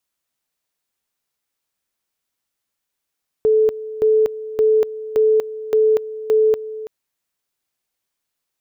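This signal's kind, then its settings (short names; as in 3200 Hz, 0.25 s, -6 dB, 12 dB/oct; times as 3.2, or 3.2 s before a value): two-level tone 435 Hz -11 dBFS, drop 15.5 dB, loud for 0.24 s, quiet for 0.33 s, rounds 6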